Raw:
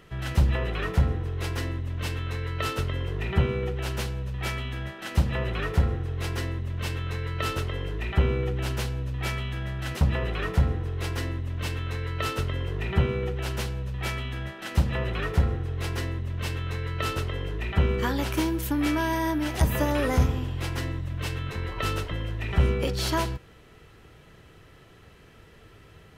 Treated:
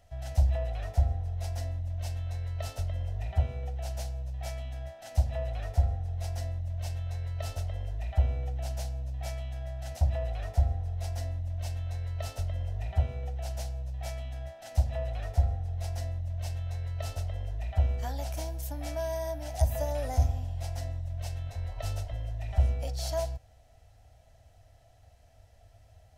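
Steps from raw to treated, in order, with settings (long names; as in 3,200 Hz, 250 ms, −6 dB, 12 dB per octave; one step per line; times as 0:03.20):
drawn EQ curve 100 Hz 0 dB, 170 Hz −20 dB, 260 Hz −13 dB, 380 Hz −27 dB, 680 Hz +6 dB, 1,100 Hz −19 dB, 1,800 Hz −14 dB, 3,000 Hz −14 dB, 5,700 Hz −2 dB, 15,000 Hz −6 dB
level −2 dB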